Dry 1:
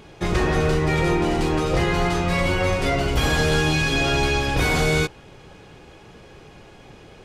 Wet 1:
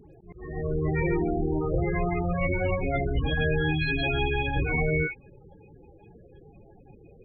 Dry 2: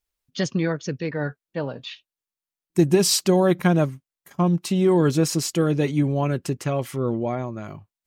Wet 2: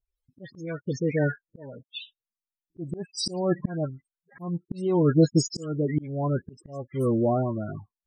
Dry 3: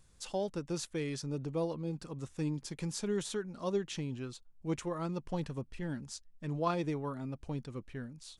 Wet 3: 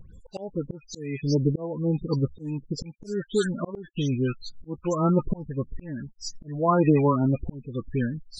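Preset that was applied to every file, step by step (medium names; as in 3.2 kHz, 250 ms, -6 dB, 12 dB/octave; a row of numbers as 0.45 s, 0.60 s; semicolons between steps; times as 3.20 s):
loudest bins only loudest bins 16; phase dispersion highs, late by 146 ms, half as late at 2.4 kHz; slow attack 566 ms; normalise loudness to -27 LUFS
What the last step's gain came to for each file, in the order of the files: -4.0 dB, +3.0 dB, +17.5 dB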